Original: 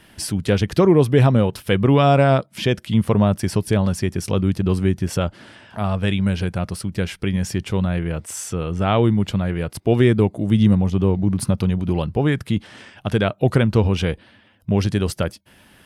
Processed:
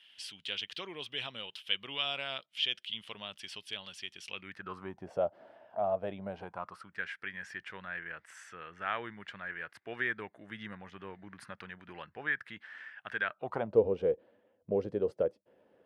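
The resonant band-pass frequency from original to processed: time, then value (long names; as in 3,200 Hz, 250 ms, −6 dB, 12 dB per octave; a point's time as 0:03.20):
resonant band-pass, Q 4.8
0:04.23 3,100 Hz
0:05.11 650 Hz
0:06.25 650 Hz
0:07.01 1,700 Hz
0:13.30 1,700 Hz
0:13.78 490 Hz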